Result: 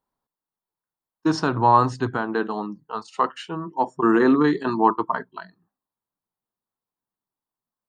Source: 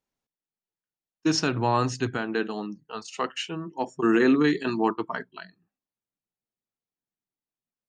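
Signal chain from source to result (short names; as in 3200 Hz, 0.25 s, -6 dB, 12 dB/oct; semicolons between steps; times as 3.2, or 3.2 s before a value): fifteen-band EQ 1000 Hz +10 dB, 2500 Hz -11 dB, 6300 Hz -11 dB; gain +2.5 dB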